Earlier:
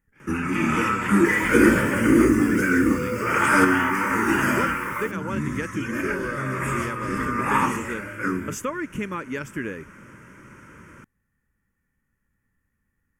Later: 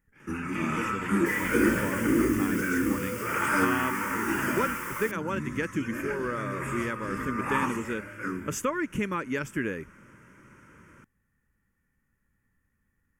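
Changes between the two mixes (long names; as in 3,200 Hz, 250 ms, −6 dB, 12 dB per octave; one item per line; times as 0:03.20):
first sound −7.5 dB
second sound +6.0 dB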